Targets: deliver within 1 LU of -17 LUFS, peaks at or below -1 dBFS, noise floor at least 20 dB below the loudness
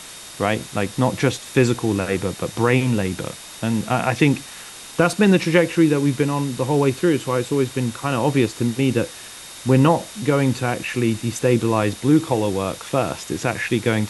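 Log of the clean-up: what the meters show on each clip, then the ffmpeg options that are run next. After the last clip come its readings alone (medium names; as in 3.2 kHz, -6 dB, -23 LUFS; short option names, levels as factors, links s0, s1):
steady tone 3.7 kHz; tone level -45 dBFS; noise floor -38 dBFS; noise floor target -41 dBFS; loudness -20.5 LUFS; peak level -3.5 dBFS; loudness target -17.0 LUFS
-> -af "bandreject=f=3700:w=30"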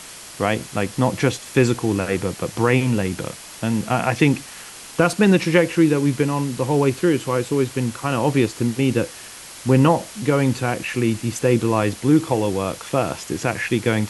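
steady tone not found; noise floor -39 dBFS; noise floor target -41 dBFS
-> -af "afftdn=nr=6:nf=-39"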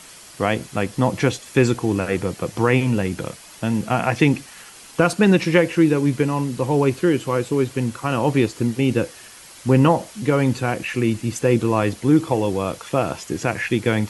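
noise floor -43 dBFS; loudness -20.5 LUFS; peak level -3.5 dBFS; loudness target -17.0 LUFS
-> -af "volume=1.5,alimiter=limit=0.891:level=0:latency=1"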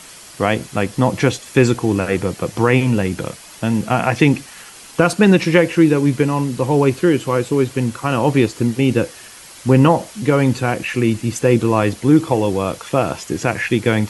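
loudness -17.0 LUFS; peak level -1.0 dBFS; noise floor -40 dBFS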